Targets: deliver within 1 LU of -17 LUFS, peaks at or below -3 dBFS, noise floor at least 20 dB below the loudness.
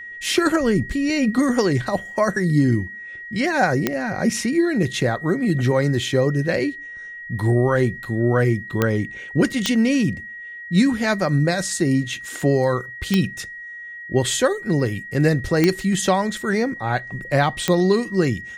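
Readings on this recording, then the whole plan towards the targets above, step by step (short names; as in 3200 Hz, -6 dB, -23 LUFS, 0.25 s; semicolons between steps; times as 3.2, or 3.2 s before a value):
clicks 6; steady tone 1900 Hz; tone level -33 dBFS; loudness -20.5 LUFS; peak -4.0 dBFS; loudness target -17.0 LUFS
-> de-click; notch 1900 Hz, Q 30; gain +3.5 dB; limiter -3 dBFS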